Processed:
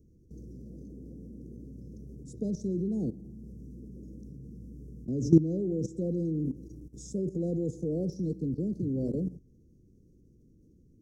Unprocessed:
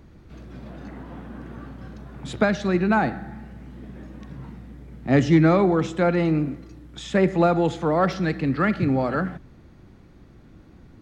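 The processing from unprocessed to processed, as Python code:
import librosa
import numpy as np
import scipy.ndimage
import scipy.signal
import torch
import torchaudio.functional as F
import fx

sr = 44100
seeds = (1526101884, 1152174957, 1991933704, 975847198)

y = scipy.signal.sosfilt(scipy.signal.cheby1(4, 1.0, [470.0, 5700.0], 'bandstop', fs=sr, output='sos'), x)
y = fx.level_steps(y, sr, step_db=15)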